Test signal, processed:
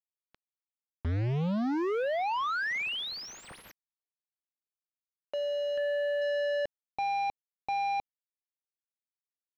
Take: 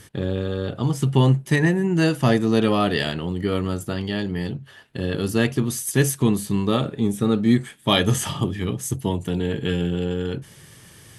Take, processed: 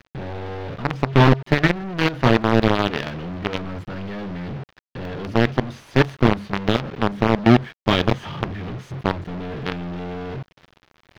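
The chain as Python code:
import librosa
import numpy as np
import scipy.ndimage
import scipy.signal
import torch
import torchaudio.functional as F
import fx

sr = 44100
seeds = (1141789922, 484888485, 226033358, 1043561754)

y = fx.high_shelf(x, sr, hz=9200.0, db=-2.5)
y = fx.quant_companded(y, sr, bits=2)
y = fx.air_absorb(y, sr, metres=280.0)
y = y * librosa.db_to_amplitude(-3.5)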